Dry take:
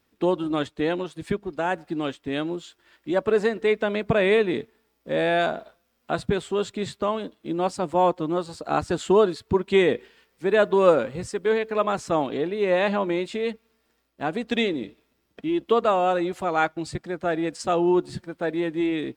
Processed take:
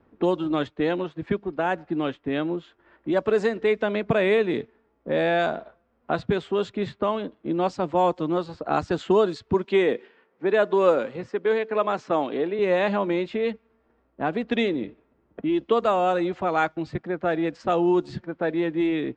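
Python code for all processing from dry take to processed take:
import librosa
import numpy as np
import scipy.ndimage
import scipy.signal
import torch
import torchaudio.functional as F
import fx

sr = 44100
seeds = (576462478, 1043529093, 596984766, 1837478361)

y = fx.chain(x, sr, fx.highpass(hz=220.0, slope=12),
    fx.high_shelf(hz=5600.0, db=-6.5), at=(9.64, 12.59))
y = fx.env_lowpass(y, sr, base_hz=1100.0, full_db=-16.0)
y = scipy.signal.sosfilt(scipy.signal.cheby1(3, 1.0, 7200.0, 'lowpass', fs=sr, output='sos'), y)
y = fx.band_squash(y, sr, depth_pct=40)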